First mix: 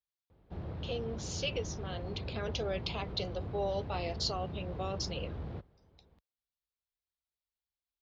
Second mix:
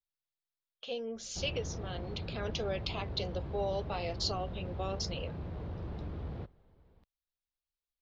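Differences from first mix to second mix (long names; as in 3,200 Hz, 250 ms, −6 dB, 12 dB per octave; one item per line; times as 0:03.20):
background: entry +0.85 s
master: remove high-pass filter 44 Hz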